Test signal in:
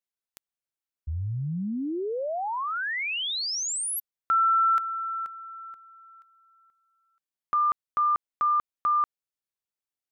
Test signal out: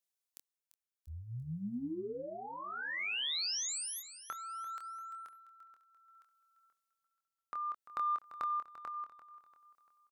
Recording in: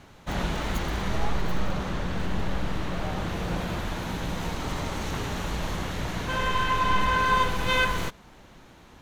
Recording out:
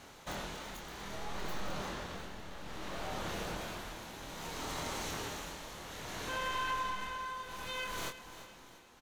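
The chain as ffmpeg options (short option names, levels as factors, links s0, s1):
-filter_complex "[0:a]bass=f=250:g=-9,treble=f=4000:g=6,acompressor=threshold=0.0158:ratio=3:attack=12:release=195:knee=6:detection=peak,tremolo=f=0.61:d=0.63,asoftclip=type=tanh:threshold=0.0891,asplit=2[s0][s1];[s1]adelay=25,volume=0.501[s2];[s0][s2]amix=inputs=2:normalize=0,aecho=1:1:343|686|1029|1372:0.2|0.0858|0.0369|0.0159,volume=0.794"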